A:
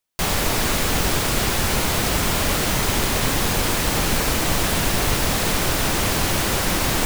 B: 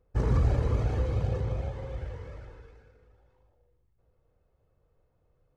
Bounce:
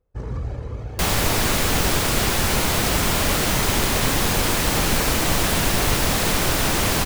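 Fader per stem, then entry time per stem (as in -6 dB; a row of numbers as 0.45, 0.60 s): +0.5, -4.0 dB; 0.80, 0.00 s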